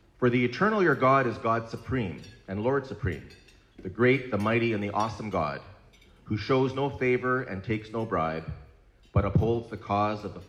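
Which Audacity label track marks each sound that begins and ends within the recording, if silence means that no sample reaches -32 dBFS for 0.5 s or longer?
3.850000	5.580000	sound
6.300000	8.530000	sound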